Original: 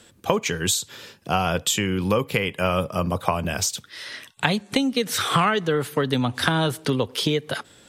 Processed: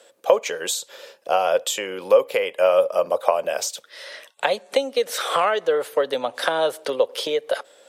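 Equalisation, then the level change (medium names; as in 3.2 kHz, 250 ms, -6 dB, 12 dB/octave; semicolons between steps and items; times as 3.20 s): resonant high-pass 550 Hz, resonance Q 4.9; -3.0 dB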